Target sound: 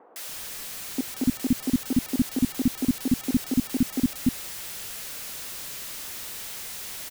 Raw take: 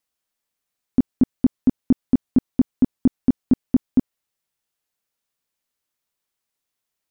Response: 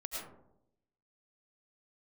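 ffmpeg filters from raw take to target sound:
-filter_complex "[0:a]aeval=exprs='val(0)+0.5*0.0447*sgn(val(0))':c=same,acrossover=split=300|940[s0][s1][s2];[s2]adelay=160[s3];[s0]adelay=290[s4];[s4][s1][s3]amix=inputs=3:normalize=0,volume=0.708"

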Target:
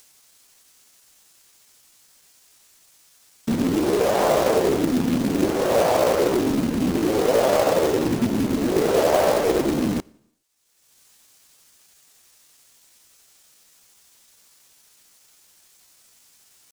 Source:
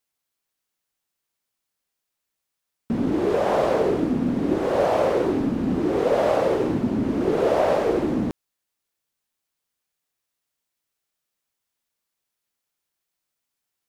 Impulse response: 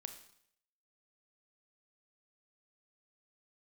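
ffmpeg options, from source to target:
-filter_complex "[0:a]acompressor=mode=upward:threshold=0.00708:ratio=2.5,equalizer=f=7000:t=o:w=1.7:g=8,acrusher=bits=3:mode=log:mix=0:aa=0.000001,asplit=2[s0][s1];[1:a]atrim=start_sample=2205,afade=t=out:st=0.41:d=0.01,atrim=end_sample=18522[s2];[s1][s2]afir=irnorm=-1:irlink=0,volume=0.282[s3];[s0][s3]amix=inputs=2:normalize=0,atempo=0.83"

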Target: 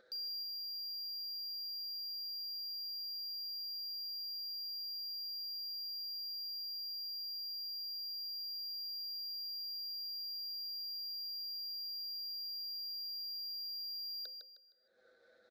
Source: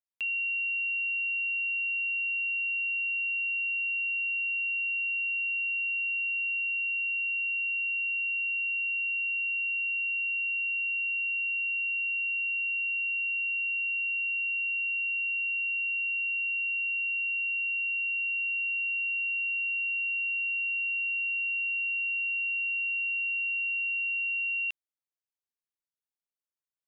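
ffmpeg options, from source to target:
-filter_complex "[0:a]anlmdn=1.58,bandreject=f=50:t=h:w=6,bandreject=f=100:t=h:w=6,bandreject=f=150:t=h:w=6,bandreject=f=200:t=h:w=6,bandreject=f=250:t=h:w=6,bandreject=f=300:t=h:w=6,acompressor=mode=upward:threshold=0.0282:ratio=2.5,asoftclip=type=tanh:threshold=0.0335,asplit=3[s0][s1][s2];[s0]bandpass=f=300:t=q:w=8,volume=1[s3];[s1]bandpass=f=870:t=q:w=8,volume=0.501[s4];[s2]bandpass=f=2240:t=q:w=8,volume=0.355[s5];[s3][s4][s5]amix=inputs=3:normalize=0,asplit=2[s6][s7];[s7]highpass=f=720:p=1,volume=28.2,asoftclip=type=tanh:threshold=0.00794[s8];[s6][s8]amix=inputs=2:normalize=0,lowpass=f=2600:p=1,volume=0.501,aecho=1:1:269|538|807|1076:0.447|0.152|0.0516|0.0176,asetrate=76440,aresample=44100,volume=2.51"

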